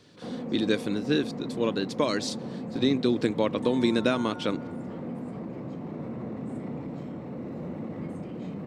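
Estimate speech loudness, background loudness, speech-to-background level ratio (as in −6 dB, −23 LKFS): −27.5 LKFS, −37.0 LKFS, 9.5 dB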